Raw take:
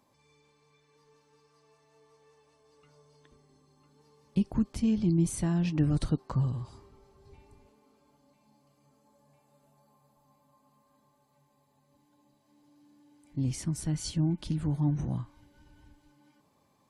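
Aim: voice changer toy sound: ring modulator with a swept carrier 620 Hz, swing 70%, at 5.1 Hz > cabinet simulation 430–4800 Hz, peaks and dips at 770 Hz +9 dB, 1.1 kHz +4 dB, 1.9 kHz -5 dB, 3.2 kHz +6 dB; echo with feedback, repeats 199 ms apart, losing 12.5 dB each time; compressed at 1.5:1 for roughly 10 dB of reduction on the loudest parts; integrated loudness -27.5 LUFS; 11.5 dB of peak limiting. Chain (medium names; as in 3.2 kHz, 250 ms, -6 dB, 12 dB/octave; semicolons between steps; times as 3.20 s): compression 1.5:1, threshold -51 dBFS; peak limiter -36 dBFS; feedback delay 199 ms, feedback 24%, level -12.5 dB; ring modulator with a swept carrier 620 Hz, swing 70%, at 5.1 Hz; cabinet simulation 430–4800 Hz, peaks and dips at 770 Hz +9 dB, 1.1 kHz +4 dB, 1.9 kHz -5 dB, 3.2 kHz +6 dB; trim +17.5 dB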